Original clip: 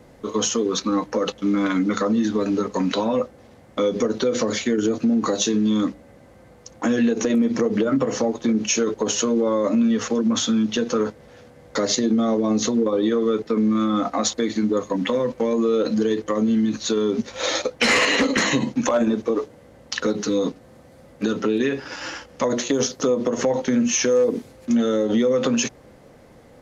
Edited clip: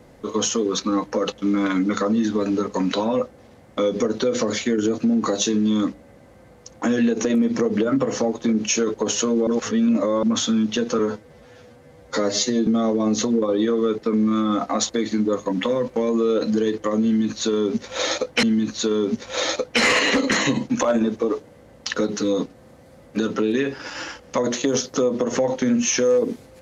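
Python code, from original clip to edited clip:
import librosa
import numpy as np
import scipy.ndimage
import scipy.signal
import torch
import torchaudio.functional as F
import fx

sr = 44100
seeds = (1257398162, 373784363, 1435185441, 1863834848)

y = fx.edit(x, sr, fx.reverse_span(start_s=9.47, length_s=0.76),
    fx.stretch_span(start_s=10.99, length_s=1.12, factor=1.5),
    fx.repeat(start_s=16.49, length_s=1.38, count=2), tone=tone)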